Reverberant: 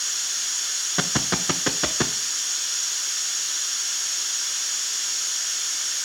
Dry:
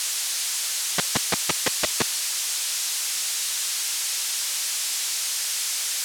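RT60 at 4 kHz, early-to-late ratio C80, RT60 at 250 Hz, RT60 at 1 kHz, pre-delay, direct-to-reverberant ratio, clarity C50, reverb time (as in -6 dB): 0.60 s, 19.5 dB, 0.55 s, 0.55 s, 3 ms, 8.0 dB, 16.5 dB, 0.55 s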